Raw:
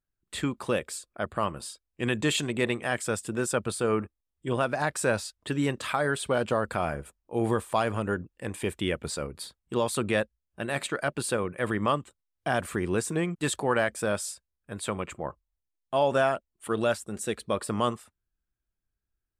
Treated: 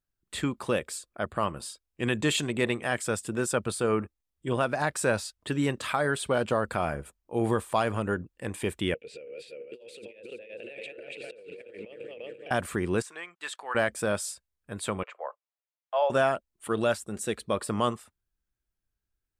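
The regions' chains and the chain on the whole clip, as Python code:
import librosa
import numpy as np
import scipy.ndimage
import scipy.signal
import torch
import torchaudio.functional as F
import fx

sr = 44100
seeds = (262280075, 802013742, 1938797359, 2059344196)

y = fx.chain(x, sr, fx.reverse_delay_fb(ms=171, feedback_pct=55, wet_db=-3.5),
    fx.double_bandpass(hz=1100.0, octaves=2.4),
    fx.over_compress(threshold_db=-44.0, ratio=-1.0), at=(8.94, 12.51))
y = fx.chain(y, sr, fx.highpass(hz=1200.0, slope=12),
    fx.peak_eq(hz=13000.0, db=-14.5, octaves=1.9), at=(13.02, 13.75))
y = fx.chain(y, sr, fx.steep_highpass(hz=490.0, slope=48),
    fx.air_absorb(metres=230.0), at=(15.03, 16.1))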